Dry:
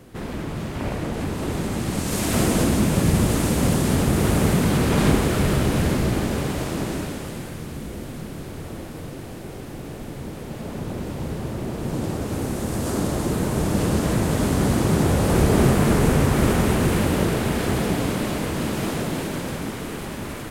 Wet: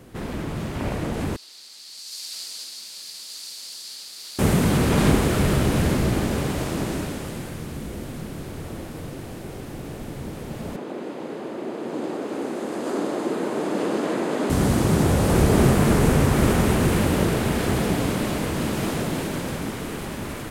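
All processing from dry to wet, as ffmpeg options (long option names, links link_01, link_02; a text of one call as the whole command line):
ffmpeg -i in.wav -filter_complex "[0:a]asettb=1/sr,asplit=3[link_01][link_02][link_03];[link_01]atrim=end=1.364[link_04];[link_02]atrim=start=1.36:end=4.39,asetpts=PTS-STARTPTS,afade=type=in:duration=0.004:curve=qsin,afade=type=out:start_time=3.026:duration=0.004:curve=qsin,bandpass=frequency=4500:width_type=q:width=6,aemphasis=mode=production:type=bsi[link_05];[link_03]atrim=start=4.386[link_06];[link_04][link_05]acrossfade=duration=0.004:curve1=hsin:curve2=qsin[link_07];[link_07][link_06]acrossfade=duration=0.004:curve1=qsin:curve2=hsin,asettb=1/sr,asplit=3[link_08][link_09][link_10];[link_08]atrim=end=10.764[link_11];[link_09]atrim=start=10.76:end=14.5,asetpts=PTS-STARTPTS,afade=type=in:duration=0.004:curve=qsin,afade=type=out:start_time=3.736:duration=0.004:curve=qsin,highpass=frequency=300:width=0.5412,highpass=frequency=300:width=1.3066,aemphasis=mode=reproduction:type=bsi,bandreject=frequency=5600:width=14[link_12];[link_10]atrim=start=14.496[link_13];[link_11][link_12]acrossfade=duration=0.004:curve1=hsin:curve2=qsin[link_14];[link_14][link_13]acrossfade=duration=0.004:curve1=qsin:curve2=hsin" out.wav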